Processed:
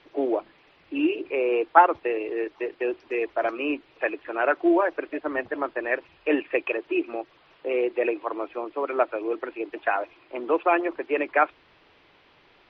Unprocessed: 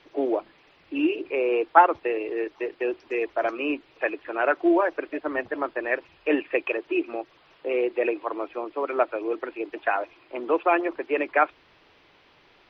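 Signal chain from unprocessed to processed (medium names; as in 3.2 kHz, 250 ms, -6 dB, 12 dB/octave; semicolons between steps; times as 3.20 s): low-pass 5 kHz 12 dB/octave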